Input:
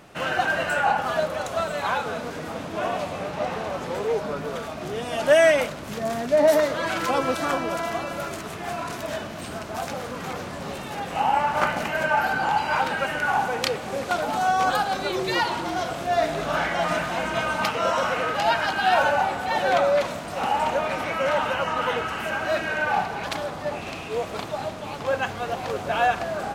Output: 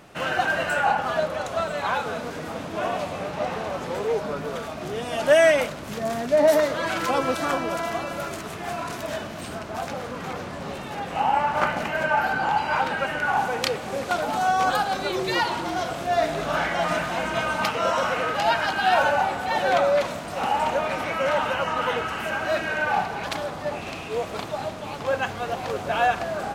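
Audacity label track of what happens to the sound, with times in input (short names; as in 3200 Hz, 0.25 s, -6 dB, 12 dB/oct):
0.950000	1.940000	high shelf 8200 Hz -6.5 dB
9.550000	13.370000	high shelf 5500 Hz -6 dB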